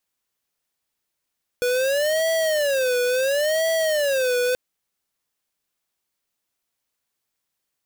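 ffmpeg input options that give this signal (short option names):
-f lavfi -i "aevalsrc='0.0891*(2*lt(mod((572*t-81/(2*PI*0.72)*sin(2*PI*0.72*t)),1),0.5)-1)':d=2.93:s=44100"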